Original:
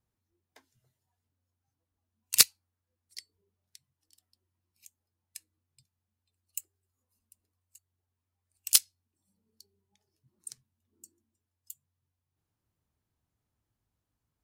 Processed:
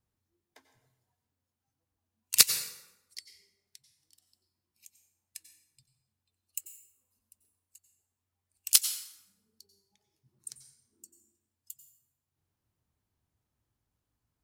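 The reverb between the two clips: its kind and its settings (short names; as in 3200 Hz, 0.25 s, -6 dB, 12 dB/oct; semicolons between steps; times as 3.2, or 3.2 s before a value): plate-style reverb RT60 0.93 s, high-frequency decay 0.7×, pre-delay 80 ms, DRR 8.5 dB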